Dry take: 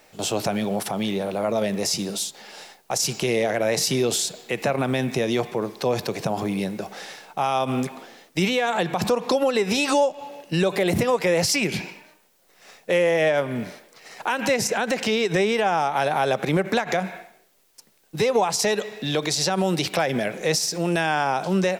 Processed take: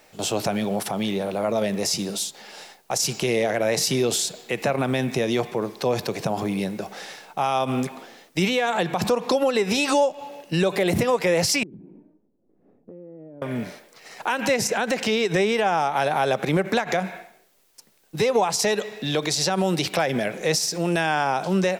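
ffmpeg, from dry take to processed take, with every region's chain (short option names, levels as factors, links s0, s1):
-filter_complex "[0:a]asettb=1/sr,asplit=3[s0][s1][s2];[s0]atrim=end=11.634[s3];[s1]atrim=start=11.63:end=13.42,asetpts=PTS-STARTPTS,afade=t=in:d=0.004:c=qsin,afade=t=out:st=1.786:d=0.004:c=qsin,lowpass=f=290:t=q:w=2.4,acompressor=threshold=0.00891:ratio=5:attack=3.2:release=140:knee=1:detection=peak[s4];[s2]atrim=start=13.416[s5];[s3][s4]acrossfade=d=0.004:c1=hsin:c2=qsin[s6];[s6][s5]acrossfade=d=0.004:c1=qsin:c2=hsin"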